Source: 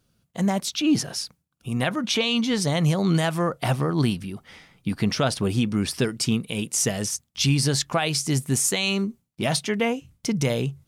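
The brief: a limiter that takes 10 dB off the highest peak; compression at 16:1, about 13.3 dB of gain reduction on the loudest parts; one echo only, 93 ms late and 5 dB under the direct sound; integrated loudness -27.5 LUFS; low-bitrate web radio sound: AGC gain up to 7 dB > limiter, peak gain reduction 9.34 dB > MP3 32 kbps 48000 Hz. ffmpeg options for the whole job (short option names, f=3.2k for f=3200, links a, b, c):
-af "acompressor=threshold=-30dB:ratio=16,alimiter=level_in=4dB:limit=-24dB:level=0:latency=1,volume=-4dB,aecho=1:1:93:0.562,dynaudnorm=m=7dB,alimiter=level_in=9.5dB:limit=-24dB:level=0:latency=1,volume=-9.5dB,volume=15dB" -ar 48000 -c:a libmp3lame -b:a 32k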